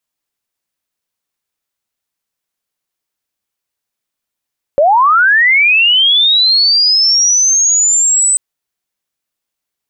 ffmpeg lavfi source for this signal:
-f lavfi -i "aevalsrc='pow(10,(-5.5-2.5*t/3.59)/20)*sin(2*PI*(540*t+7560*t*t/(2*3.59)))':d=3.59:s=44100"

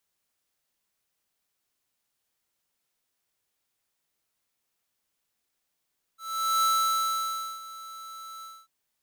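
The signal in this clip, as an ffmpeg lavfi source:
-f lavfi -i "aevalsrc='0.0708*(2*lt(mod(1320*t,1),0.5)-1)':d=2.493:s=44100,afade=t=in:d=0.447,afade=t=out:st=0.447:d=0.97:silence=0.112,afade=t=out:st=2.25:d=0.243"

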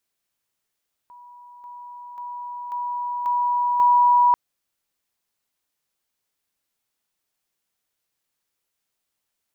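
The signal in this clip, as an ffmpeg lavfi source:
-f lavfi -i "aevalsrc='pow(10,(-42.5+6*floor(t/0.54))/20)*sin(2*PI*973*t)':d=3.24:s=44100"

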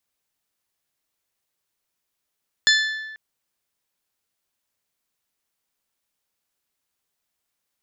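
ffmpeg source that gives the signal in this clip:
-f lavfi -i "aevalsrc='0.188*pow(10,-3*t/1.3)*sin(2*PI*1750*t)+0.15*pow(10,-3*t/0.8)*sin(2*PI*3500*t)+0.119*pow(10,-3*t/0.704)*sin(2*PI*4200*t)+0.0944*pow(10,-3*t/0.603)*sin(2*PI*5250*t)+0.075*pow(10,-3*t/0.493)*sin(2*PI*7000*t)':d=0.49:s=44100"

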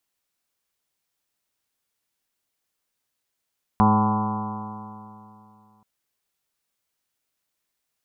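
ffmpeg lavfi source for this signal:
-f lavfi -i "aevalsrc='0.0891*pow(10,-3*t/2.75)*sin(2*PI*105.08*t)+0.158*pow(10,-3*t/2.75)*sin(2*PI*210.67*t)+0.0251*pow(10,-3*t/2.75)*sin(2*PI*317.26*t)+0.0282*pow(10,-3*t/2.75)*sin(2*PI*425.34*t)+0.0188*pow(10,-3*t/2.75)*sin(2*PI*535.4*t)+0.0112*pow(10,-3*t/2.75)*sin(2*PI*647.89*t)+0.0841*pow(10,-3*t/2.75)*sin(2*PI*763.27*t)+0.0596*pow(10,-3*t/2.75)*sin(2*PI*881.96*t)+0.112*pow(10,-3*t/2.75)*sin(2*PI*1004.37*t)+0.0422*pow(10,-3*t/2.75)*sin(2*PI*1130.88*t)+0.015*pow(10,-3*t/2.75)*sin(2*PI*1261.86*t)+0.0106*pow(10,-3*t/2.75)*sin(2*PI*1397.63*t)':d=2.03:s=44100"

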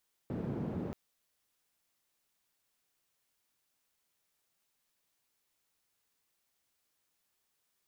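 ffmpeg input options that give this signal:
-f lavfi -i "anoisesrc=c=white:d=0.63:r=44100:seed=1,highpass=f=140,lowpass=f=200,volume=-8.2dB"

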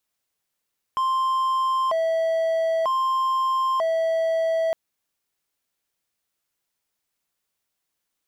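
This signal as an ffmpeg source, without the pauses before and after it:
-f lavfi -i "aevalsrc='0.133*(1-4*abs(mod((851.5*t+198.5/0.53*(0.5-abs(mod(0.53*t,1)-0.5)))+0.25,1)-0.5))':d=3.76:s=44100"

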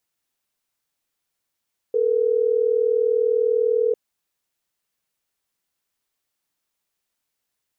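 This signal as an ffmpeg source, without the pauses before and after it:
-f lavfi -i "aevalsrc='0.106*(sin(2*PI*440*t)+sin(2*PI*480*t))*clip(min(mod(t,6),2-mod(t,6))/0.005,0,1)':d=3.12:s=44100"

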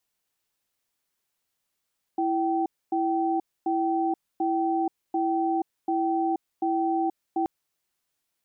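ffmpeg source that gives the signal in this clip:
-f lavfi -i "aevalsrc='0.0562*(sin(2*PI*331*t)+sin(2*PI*773*t))*clip(min(mod(t,0.74),0.48-mod(t,0.74))/0.005,0,1)':d=5.28:s=44100"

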